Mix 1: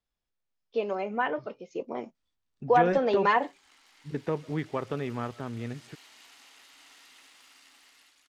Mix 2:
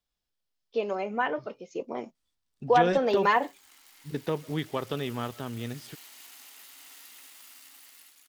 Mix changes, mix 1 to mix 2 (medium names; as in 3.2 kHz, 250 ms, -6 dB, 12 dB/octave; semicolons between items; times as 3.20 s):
second voice: add high-order bell 4 kHz +10 dB 1.1 oct; master: remove distance through air 78 m